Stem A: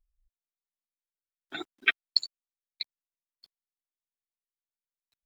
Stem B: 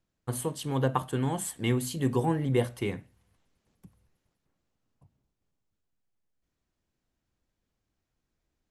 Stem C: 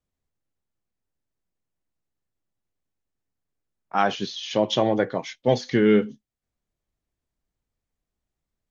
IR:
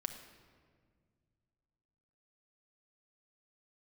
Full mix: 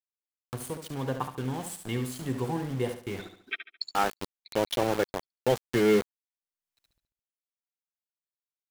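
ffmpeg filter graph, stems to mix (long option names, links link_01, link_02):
-filter_complex "[0:a]adelay=1650,volume=-11dB,asplit=2[link_01][link_02];[link_02]volume=-10dB[link_03];[1:a]aeval=exprs='val(0)*gte(abs(val(0)),0.0178)':channel_layout=same,adelay=250,volume=-4.5dB,asplit=2[link_04][link_05];[link_05]volume=-8.5dB[link_06];[2:a]agate=range=-33dB:threshold=-32dB:ratio=3:detection=peak,aecho=1:1:2.3:0.33,aeval=exprs='val(0)*gte(abs(val(0)),0.0794)':channel_layout=same,volume=-5dB,asplit=2[link_07][link_08];[link_08]apad=whole_len=304639[link_09];[link_01][link_09]sidechaincompress=threshold=-41dB:ratio=3:attack=6.2:release=1100[link_10];[link_03][link_06]amix=inputs=2:normalize=0,aecho=0:1:71|142|213|284:1|0.3|0.09|0.027[link_11];[link_10][link_04][link_07][link_11]amix=inputs=4:normalize=0,acompressor=mode=upward:threshold=-34dB:ratio=2.5"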